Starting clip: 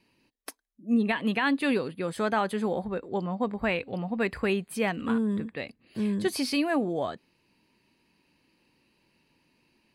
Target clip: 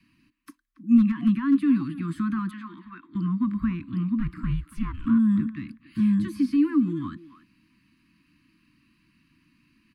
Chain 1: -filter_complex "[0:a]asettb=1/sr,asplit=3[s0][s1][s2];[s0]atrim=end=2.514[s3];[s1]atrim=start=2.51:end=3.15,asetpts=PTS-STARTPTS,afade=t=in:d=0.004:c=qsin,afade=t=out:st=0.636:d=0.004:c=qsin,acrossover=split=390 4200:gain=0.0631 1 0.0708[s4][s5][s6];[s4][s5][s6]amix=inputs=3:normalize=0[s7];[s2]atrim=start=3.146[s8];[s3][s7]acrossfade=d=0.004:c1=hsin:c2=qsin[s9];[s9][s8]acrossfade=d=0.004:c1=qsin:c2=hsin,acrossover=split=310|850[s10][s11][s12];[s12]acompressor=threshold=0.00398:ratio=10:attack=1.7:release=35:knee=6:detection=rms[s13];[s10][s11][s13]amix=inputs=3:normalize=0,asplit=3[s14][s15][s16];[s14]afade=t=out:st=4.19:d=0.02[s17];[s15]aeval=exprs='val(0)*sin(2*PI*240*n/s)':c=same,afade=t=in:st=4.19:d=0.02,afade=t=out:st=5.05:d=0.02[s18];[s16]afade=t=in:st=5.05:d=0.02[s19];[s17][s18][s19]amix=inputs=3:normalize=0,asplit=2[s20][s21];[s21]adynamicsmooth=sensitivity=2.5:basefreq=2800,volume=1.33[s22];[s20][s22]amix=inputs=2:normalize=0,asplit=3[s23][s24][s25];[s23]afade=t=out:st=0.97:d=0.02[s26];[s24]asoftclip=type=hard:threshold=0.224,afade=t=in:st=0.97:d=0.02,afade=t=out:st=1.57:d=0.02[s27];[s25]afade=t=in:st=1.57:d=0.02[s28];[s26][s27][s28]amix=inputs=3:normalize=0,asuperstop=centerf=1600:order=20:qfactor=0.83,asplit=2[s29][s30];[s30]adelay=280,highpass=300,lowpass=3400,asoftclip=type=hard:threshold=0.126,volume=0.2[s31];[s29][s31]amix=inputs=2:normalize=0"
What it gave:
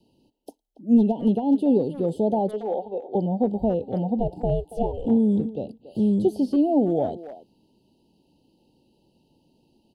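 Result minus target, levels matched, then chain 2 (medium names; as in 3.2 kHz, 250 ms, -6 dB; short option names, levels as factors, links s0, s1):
500 Hz band +19.5 dB
-filter_complex "[0:a]asettb=1/sr,asplit=3[s0][s1][s2];[s0]atrim=end=2.514[s3];[s1]atrim=start=2.51:end=3.15,asetpts=PTS-STARTPTS,afade=t=in:d=0.004:c=qsin,afade=t=out:st=0.636:d=0.004:c=qsin,acrossover=split=390 4200:gain=0.0631 1 0.0708[s4][s5][s6];[s4][s5][s6]amix=inputs=3:normalize=0[s7];[s2]atrim=start=3.146[s8];[s3][s7]acrossfade=d=0.004:c1=hsin:c2=qsin[s9];[s9][s8]acrossfade=d=0.004:c1=qsin:c2=hsin,acrossover=split=310|850[s10][s11][s12];[s12]acompressor=threshold=0.00398:ratio=10:attack=1.7:release=35:knee=6:detection=rms[s13];[s10][s11][s13]amix=inputs=3:normalize=0,asplit=3[s14][s15][s16];[s14]afade=t=out:st=4.19:d=0.02[s17];[s15]aeval=exprs='val(0)*sin(2*PI*240*n/s)':c=same,afade=t=in:st=4.19:d=0.02,afade=t=out:st=5.05:d=0.02[s18];[s16]afade=t=in:st=5.05:d=0.02[s19];[s17][s18][s19]amix=inputs=3:normalize=0,asplit=2[s20][s21];[s21]adynamicsmooth=sensitivity=2.5:basefreq=2800,volume=1.33[s22];[s20][s22]amix=inputs=2:normalize=0,asplit=3[s23][s24][s25];[s23]afade=t=out:st=0.97:d=0.02[s26];[s24]asoftclip=type=hard:threshold=0.224,afade=t=in:st=0.97:d=0.02,afade=t=out:st=1.57:d=0.02[s27];[s25]afade=t=in:st=1.57:d=0.02[s28];[s26][s27][s28]amix=inputs=3:normalize=0,asuperstop=centerf=580:order=20:qfactor=0.83,asplit=2[s29][s30];[s30]adelay=280,highpass=300,lowpass=3400,asoftclip=type=hard:threshold=0.126,volume=0.2[s31];[s29][s31]amix=inputs=2:normalize=0"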